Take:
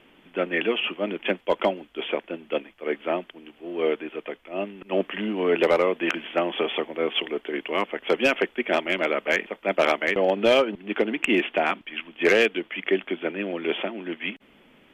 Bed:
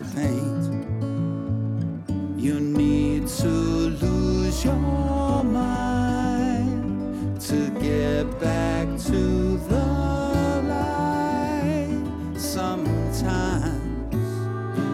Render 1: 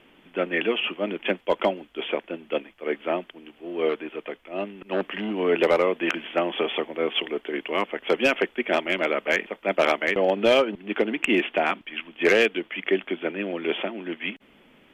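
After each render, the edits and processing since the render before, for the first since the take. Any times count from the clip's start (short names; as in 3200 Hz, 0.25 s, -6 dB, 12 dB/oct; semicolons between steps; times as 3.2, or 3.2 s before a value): 3.89–5.31 core saturation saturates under 780 Hz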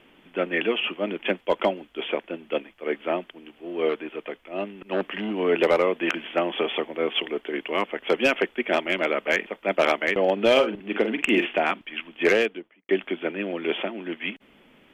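10.51–11.58 doubler 46 ms -9 dB; 12.22–12.89 studio fade out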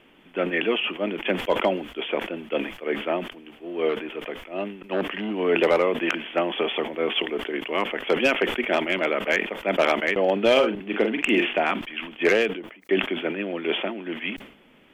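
sustainer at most 100 dB/s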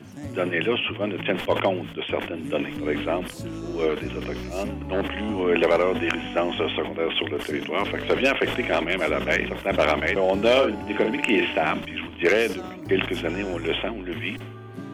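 add bed -12 dB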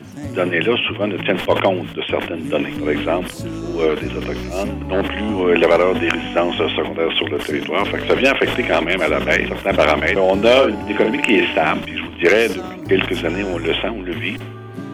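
gain +6.5 dB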